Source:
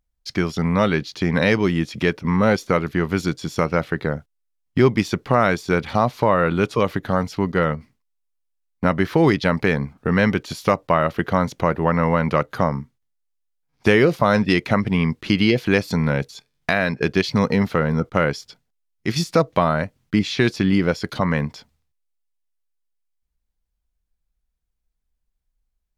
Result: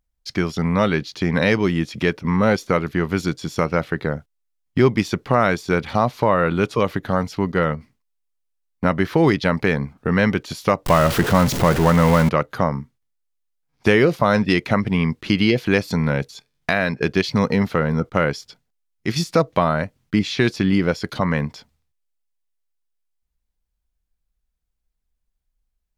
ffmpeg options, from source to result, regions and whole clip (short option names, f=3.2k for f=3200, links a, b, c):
-filter_complex "[0:a]asettb=1/sr,asplit=3[a][b][c];[a]atrim=end=10.864[d];[b]atrim=start=10.86:end=12.29,asetpts=PTS-STARTPTS,afade=t=in:d=0.004:c=qsin,afade=t=out:st=1.426:d=0.004:c=qsin,aeval=exprs='val(0)+0.5*0.106*sgn(val(0))':c=same,lowshelf=f=170:g=4.5[e];[c]atrim=start=12.286[f];[d][e]acrossfade=d=0.004:c1=hsin:c2=qsin[g];[g][f]acrossfade=d=0.004:c1=qsin:c2=hsin"